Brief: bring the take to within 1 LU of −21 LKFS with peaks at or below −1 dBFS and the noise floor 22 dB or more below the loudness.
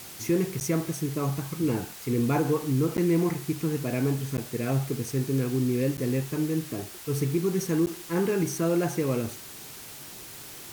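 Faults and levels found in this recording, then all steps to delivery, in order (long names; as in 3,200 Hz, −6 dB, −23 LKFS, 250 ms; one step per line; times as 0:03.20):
number of dropouts 5; longest dropout 9.5 ms; background noise floor −43 dBFS; target noise floor −50 dBFS; integrated loudness −27.5 LKFS; sample peak −14.5 dBFS; target loudness −21.0 LKFS
→ repair the gap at 0:00.60/0:02.97/0:04.37/0:05.97/0:07.86, 9.5 ms
noise reduction from a noise print 7 dB
level +6.5 dB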